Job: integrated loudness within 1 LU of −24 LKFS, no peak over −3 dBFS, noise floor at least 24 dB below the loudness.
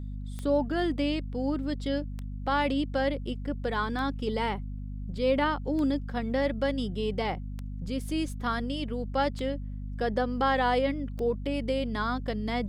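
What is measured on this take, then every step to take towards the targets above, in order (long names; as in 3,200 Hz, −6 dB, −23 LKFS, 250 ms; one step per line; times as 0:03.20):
number of clicks 7; mains hum 50 Hz; hum harmonics up to 250 Hz; level of the hum −34 dBFS; integrated loudness −30.0 LKFS; sample peak −14.5 dBFS; target loudness −24.0 LKFS
→ click removal
mains-hum notches 50/100/150/200/250 Hz
level +6 dB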